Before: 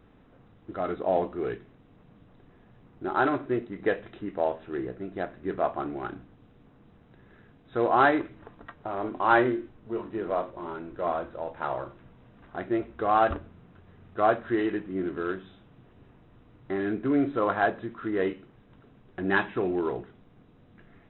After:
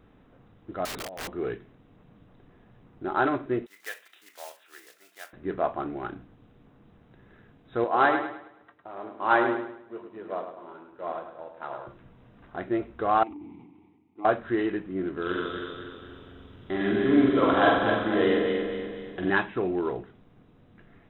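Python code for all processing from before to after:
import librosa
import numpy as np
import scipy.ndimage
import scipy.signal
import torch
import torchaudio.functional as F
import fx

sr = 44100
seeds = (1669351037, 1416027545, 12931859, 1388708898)

y = fx.chain(x, sr, fx.over_compress(threshold_db=-30.0, ratio=-0.5),
    fx.overflow_wrap(gain_db=30.5), at=(0.85, 1.3))
y = fx.chain(y, sr, fx.block_float(bits=5),
    fx.bessel_highpass(hz=2100.0, order=2),
    fx.doubler(ms=38.0, db=-13.0), at=(3.66, 5.33))
y = fx.chain(y, sr, fx.highpass(hz=240.0, slope=6),
    fx.echo_feedback(ms=105, feedback_pct=52, wet_db=-6.0),
    fx.upward_expand(threshold_db=-41.0, expansion=1.5), at=(7.84, 11.87))
y = fx.chain(y, sr, fx.vowel_filter(vowel='u'),
    fx.peak_eq(hz=1400.0, db=-7.0, octaves=0.54),
    fx.sustainer(db_per_s=38.0), at=(13.23, 14.25))
y = fx.chain(y, sr, fx.reverse_delay_fb(ms=122, feedback_pct=69, wet_db=-2.0),
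    fx.peak_eq(hz=3300.0, db=12.0, octaves=0.42),
    fx.room_flutter(wall_m=7.7, rt60_s=0.66), at=(15.22, 19.3))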